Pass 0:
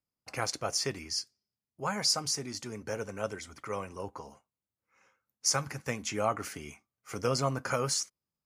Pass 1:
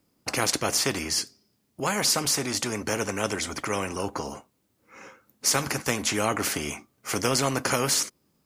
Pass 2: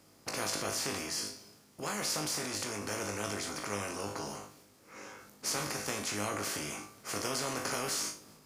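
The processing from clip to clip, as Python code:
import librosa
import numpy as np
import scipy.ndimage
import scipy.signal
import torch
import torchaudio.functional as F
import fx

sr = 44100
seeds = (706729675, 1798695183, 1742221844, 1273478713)

y1 = fx.peak_eq(x, sr, hz=300.0, db=10.5, octaves=1.6)
y1 = fx.spectral_comp(y1, sr, ratio=2.0)
y1 = F.gain(torch.from_numpy(y1), 3.5).numpy()
y2 = fx.bin_compress(y1, sr, power=0.6)
y2 = fx.comb_fb(y2, sr, f0_hz=51.0, decay_s=0.33, harmonics='all', damping=0.0, mix_pct=90)
y2 = fx.transient(y2, sr, attack_db=1, sustain_db=6)
y2 = F.gain(torch.from_numpy(y2), -7.0).numpy()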